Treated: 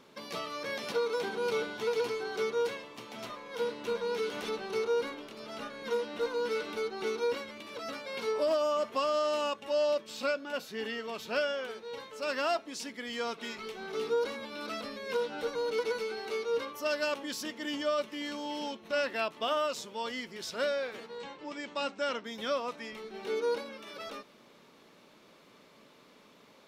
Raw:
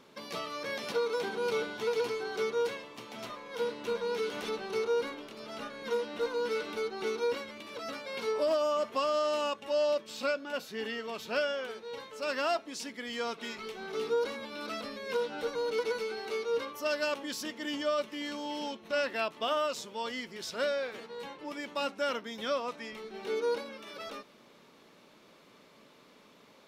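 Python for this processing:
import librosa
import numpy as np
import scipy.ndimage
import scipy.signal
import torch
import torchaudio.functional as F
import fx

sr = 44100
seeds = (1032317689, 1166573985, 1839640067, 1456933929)

y = fx.ellip_lowpass(x, sr, hz=8200.0, order=4, stop_db=40, at=(21.18, 22.25))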